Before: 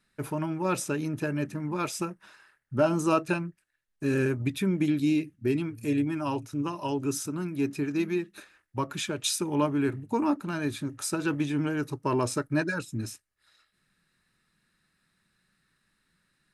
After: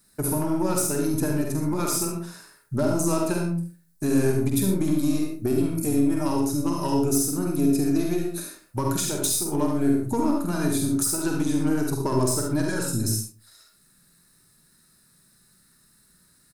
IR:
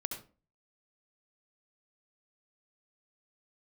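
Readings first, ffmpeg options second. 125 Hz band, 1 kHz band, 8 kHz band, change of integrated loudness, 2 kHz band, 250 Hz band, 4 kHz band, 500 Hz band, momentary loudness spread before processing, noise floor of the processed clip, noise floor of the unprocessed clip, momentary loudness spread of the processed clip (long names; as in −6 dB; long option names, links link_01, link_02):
+5.0 dB, +1.5 dB, +10.5 dB, +5.0 dB, −2.0 dB, +5.0 dB, +3.0 dB, +3.5 dB, 8 LU, −60 dBFS, −75 dBFS, 6 LU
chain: -filter_complex "[0:a]aeval=exprs='0.266*(cos(1*acos(clip(val(0)/0.266,-1,1)))-cos(1*PI/2))+0.0133*(cos(8*acos(clip(val(0)/0.266,-1,1)))-cos(8*PI/2))':channel_layout=same,asplit=2[link_01][link_02];[link_02]adelay=47,volume=-6dB[link_03];[link_01][link_03]amix=inputs=2:normalize=0,aexciter=amount=2.3:drive=8.7:freq=4000,acompressor=threshold=-30dB:ratio=4,equalizer=frequency=2900:width=0.57:gain=-8.5[link_04];[1:a]atrim=start_sample=2205[link_05];[link_04][link_05]afir=irnorm=-1:irlink=0,volume=8.5dB"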